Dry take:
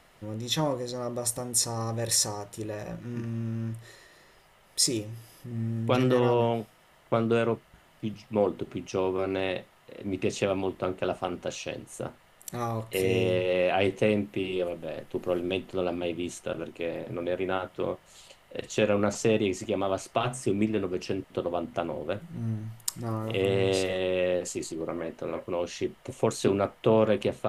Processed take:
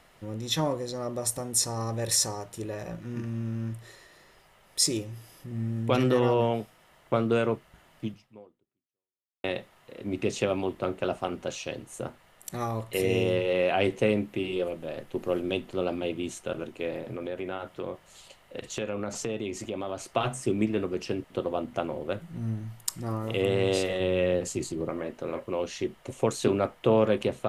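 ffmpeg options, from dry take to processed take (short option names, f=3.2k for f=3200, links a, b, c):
-filter_complex "[0:a]asettb=1/sr,asplit=3[a][b][c];[a]atrim=end=16.994[d];[b]atrim=start=16.99:end=20.12,asetpts=PTS-STARTPTS,afade=t=in:d=0.004:c=qsin,afade=t=out:st=3.126:d=0.004:c=qsin,acompressor=threshold=-31dB:ratio=2.5:attack=3.2:release=140:knee=1:detection=peak[e];[c]atrim=start=20.116[f];[d][e]acrossfade=d=0.004:c1=hsin:c2=qsin[g];[g][f]acrossfade=d=0.004:c1=qsin:c2=hsin,asettb=1/sr,asplit=3[h][i][j];[h]atrim=end=24.004[k];[i]atrim=start=24:end=24.89,asetpts=PTS-STARTPTS,afade=t=in:d=0.004:c=qsin,afade=t=out:st=0.886:d=0.004:c=qsin,equalizer=f=100:t=o:w=2:g=9[l];[j]atrim=start=24.886[m];[k][l]acrossfade=d=0.004:c1=hsin:c2=qsin[n];[n][m]acrossfade=d=0.004:c1=qsin:c2=hsin,asplit=2[o][p];[o]atrim=end=9.44,asetpts=PTS-STARTPTS,afade=t=out:st=8.06:d=1.38:c=exp[q];[p]atrim=start=9.44,asetpts=PTS-STARTPTS,afade=t=in:d=0.004:c=hsin[r];[q][r]concat=n=2:v=0:a=1"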